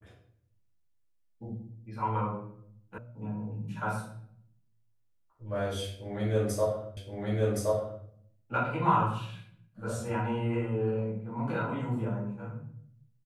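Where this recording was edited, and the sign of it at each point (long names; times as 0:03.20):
0:02.98: cut off before it has died away
0:06.97: the same again, the last 1.07 s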